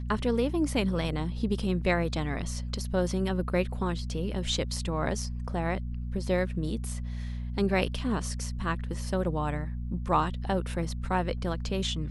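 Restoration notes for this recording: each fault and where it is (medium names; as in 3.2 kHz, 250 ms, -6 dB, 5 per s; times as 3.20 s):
hum 60 Hz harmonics 4 -34 dBFS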